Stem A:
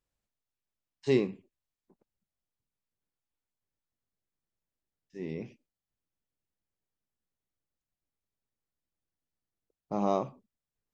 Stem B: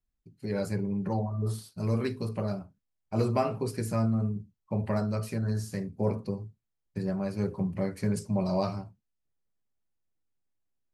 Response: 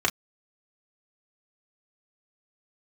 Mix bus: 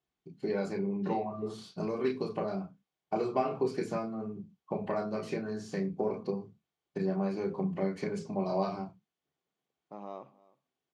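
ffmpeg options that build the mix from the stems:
-filter_complex "[0:a]aemphasis=mode=reproduction:type=bsi,acompressor=threshold=-28dB:ratio=2,highpass=frequency=800:poles=1,volume=-6.5dB,asplit=2[link_01][link_02];[link_02]volume=-22dB[link_03];[1:a]acompressor=threshold=-36dB:ratio=3,volume=0dB,asplit=2[link_04][link_05];[link_05]volume=-6dB[link_06];[2:a]atrim=start_sample=2205[link_07];[link_06][link_07]afir=irnorm=-1:irlink=0[link_08];[link_03]aecho=0:1:315:1[link_09];[link_01][link_04][link_08][link_09]amix=inputs=4:normalize=0,highpass=140,lowpass=4800"

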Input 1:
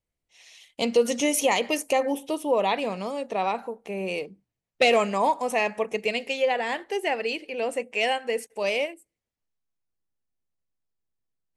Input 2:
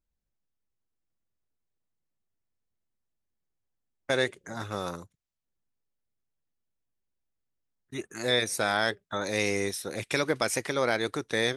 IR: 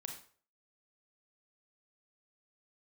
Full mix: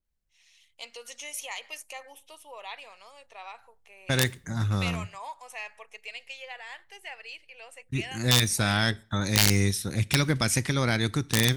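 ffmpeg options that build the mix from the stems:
-filter_complex "[0:a]highpass=1200,volume=-10dB[link_01];[1:a]asubboost=boost=10.5:cutoff=150,aeval=exprs='(mod(3.98*val(0)+1,2)-1)/3.98':channel_layout=same,adynamicequalizer=threshold=0.0126:dfrequency=2000:dqfactor=0.7:tfrequency=2000:tqfactor=0.7:attack=5:release=100:ratio=0.375:range=2.5:mode=boostabove:tftype=highshelf,volume=-1dB,asplit=2[link_02][link_03];[link_03]volume=-15dB[link_04];[2:a]atrim=start_sample=2205[link_05];[link_04][link_05]afir=irnorm=-1:irlink=0[link_06];[link_01][link_02][link_06]amix=inputs=3:normalize=0"

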